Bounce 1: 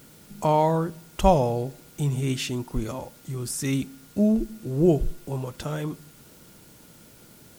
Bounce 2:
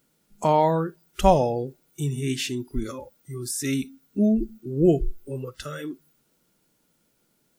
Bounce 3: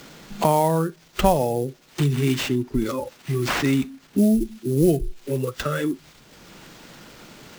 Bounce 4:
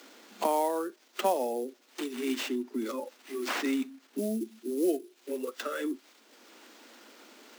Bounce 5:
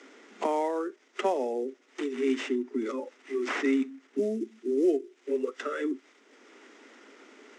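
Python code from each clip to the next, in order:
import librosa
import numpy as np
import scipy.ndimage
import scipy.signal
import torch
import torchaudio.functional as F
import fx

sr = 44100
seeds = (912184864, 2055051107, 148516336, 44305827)

y1 = fx.noise_reduce_blind(x, sr, reduce_db=19)
y1 = fx.peak_eq(y1, sr, hz=86.0, db=-14.0, octaves=0.72)
y1 = y1 * 10.0 ** (1.5 / 20.0)
y2 = fx.sample_hold(y1, sr, seeds[0], rate_hz=11000.0, jitter_pct=20)
y2 = fx.band_squash(y2, sr, depth_pct=70)
y2 = y2 * 10.0 ** (3.5 / 20.0)
y3 = scipy.signal.sosfilt(scipy.signal.butter(12, 230.0, 'highpass', fs=sr, output='sos'), y2)
y3 = y3 * 10.0 ** (-8.0 / 20.0)
y4 = fx.cabinet(y3, sr, low_hz=170.0, low_slope=12, high_hz=7300.0, hz=(270.0, 410.0, 1300.0, 2000.0, 4300.0), db=(6, 10, 4, 8, -8))
y4 = y4 * 10.0 ** (-2.5 / 20.0)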